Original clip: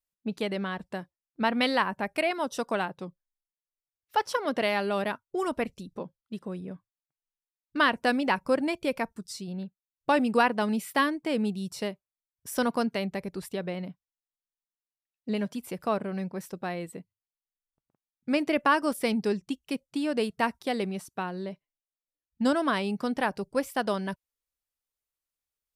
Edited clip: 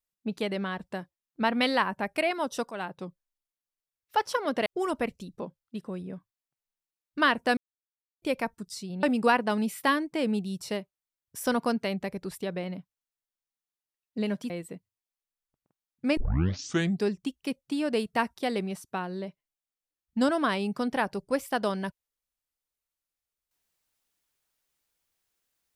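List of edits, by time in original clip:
2.71–3.06 s: fade in equal-power, from -13.5 dB
4.66–5.24 s: delete
8.15–8.80 s: mute
9.61–10.14 s: delete
15.61–16.74 s: delete
18.41 s: tape start 0.87 s

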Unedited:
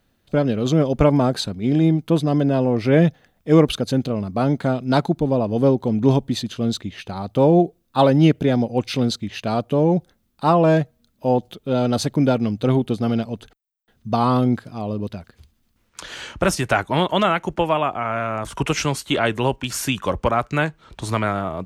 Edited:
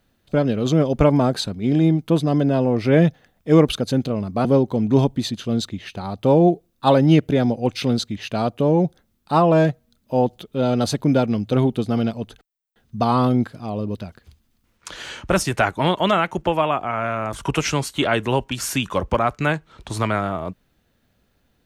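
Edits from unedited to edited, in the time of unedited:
4.45–5.57 s: delete

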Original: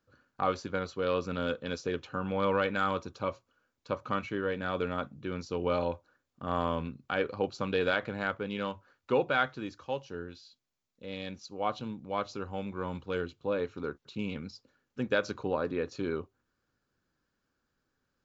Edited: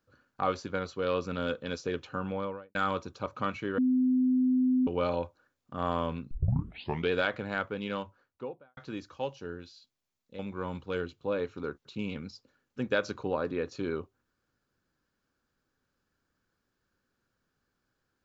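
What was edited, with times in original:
2.17–2.75 s: studio fade out
3.26–3.95 s: delete
4.47–5.56 s: bleep 255 Hz -22 dBFS
7.00 s: tape start 0.80 s
8.57–9.46 s: studio fade out
11.08–12.59 s: delete

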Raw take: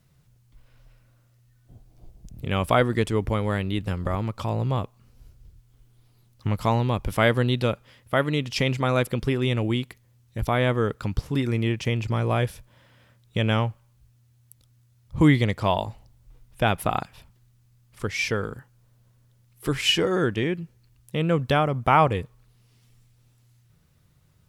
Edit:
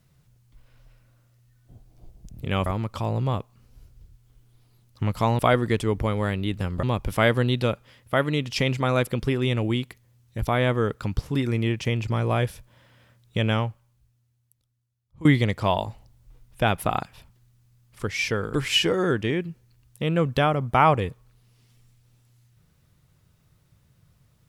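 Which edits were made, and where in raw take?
2.66–4.10 s: move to 6.83 s
13.44–15.25 s: fade out quadratic, to -21 dB
18.54–19.67 s: delete

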